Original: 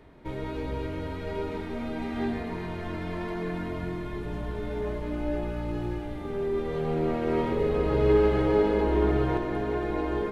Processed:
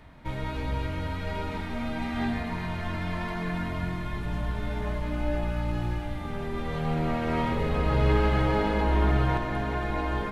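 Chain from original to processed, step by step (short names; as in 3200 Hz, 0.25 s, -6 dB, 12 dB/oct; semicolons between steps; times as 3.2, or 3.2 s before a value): bell 390 Hz -14.5 dB 0.81 oct; gain +5 dB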